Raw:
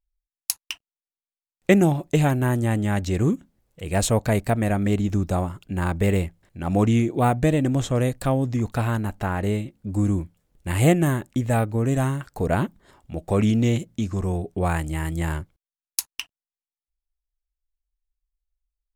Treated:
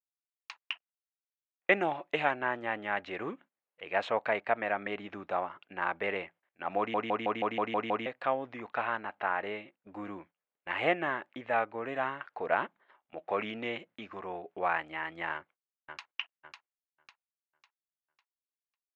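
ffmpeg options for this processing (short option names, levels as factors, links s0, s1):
-filter_complex "[0:a]asettb=1/sr,asplit=3[s0][s1][s2];[s0]atrim=end=1.724[s3];[s1]atrim=start=1.72:end=2.34,asetpts=PTS-STARTPTS,afade=t=in:d=0.004:c=qsin,afade=t=out:st=0.616:d=0.004:c=qsin,highshelf=f=4700:g=8[s4];[s2]atrim=start=2.336[s5];[s3][s4]acrossfade=d=0.004:c1=hsin:c2=qsin[s6];[s6][s5]acrossfade=d=0.004:c1=qsin:c2=hsin,asplit=2[s7][s8];[s8]afade=t=in:st=15.33:d=0.01,afade=t=out:st=16.1:d=0.01,aecho=0:1:550|1100|1650|2200|2750:0.530884|0.238898|0.107504|0.0483768|0.0217696[s9];[s7][s9]amix=inputs=2:normalize=0,asplit=9[s10][s11][s12][s13][s14][s15][s16][s17][s18];[s10]atrim=end=6.942[s19];[s11]atrim=start=6.778:end=6.942[s20];[s12]atrim=start=6.778:end=6.942[s21];[s13]atrim=start=6.778:end=6.942[s22];[s14]atrim=start=6.778:end=6.942[s23];[s15]atrim=start=6.778:end=6.942[s24];[s16]atrim=start=6.778:end=6.942[s25];[s17]atrim=start=6.778:end=6.942[s26];[s18]atrim=start=8.058[s27];[s19][s20]acrossfade=d=0.004:c1=hsin:c2=hsin[s28];[s28][s21]acrossfade=d=0.004:c1=hsin:c2=hsin[s29];[s29][s22]acrossfade=d=0.004:c1=hsin:c2=hsin[s30];[s30][s23]acrossfade=d=0.004:c1=hsin:c2=hsin[s31];[s31][s24]acrossfade=d=0.004:c1=hsin:c2=hsin[s32];[s32][s25]acrossfade=d=0.004:c1=hsin:c2=hsin[s33];[s33][s26]acrossfade=d=0.004:c1=hsin:c2=hsin[s34];[s34][s27]acrossfade=d=0.004:c1=hsin:c2=hsin,highpass=770,agate=range=0.224:threshold=0.00178:ratio=16:detection=peak,lowpass=f=2700:w=0.5412,lowpass=f=2700:w=1.3066"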